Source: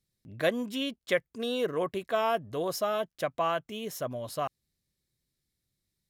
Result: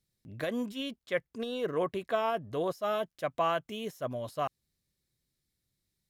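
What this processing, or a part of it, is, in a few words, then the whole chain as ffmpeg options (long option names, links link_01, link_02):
de-esser from a sidechain: -filter_complex "[0:a]asplit=2[link_01][link_02];[link_02]highpass=frequency=5300:width=0.5412,highpass=frequency=5300:width=1.3066,apad=whole_len=268942[link_03];[link_01][link_03]sidechaincompress=threshold=-51dB:ratio=20:attack=3.1:release=60,asettb=1/sr,asplit=3[link_04][link_05][link_06];[link_04]atrim=end=1.024[link_07];[link_05]atrim=start=1.02:end=2.73,asetpts=PTS-STARTPTS,afade=type=in:duration=0.004:curve=qsin,afade=type=out:start_time=1.706:duration=0.004:curve=qsin,highshelf=frequency=5500:gain=-5.5[link_08];[link_06]atrim=start=2.726[link_09];[link_07][link_08]acrossfade=duration=0.004:curve1=hsin:curve2=qsin[link_10];[link_10][link_09]acrossfade=duration=0.004:curve1=qsin:curve2=hsin"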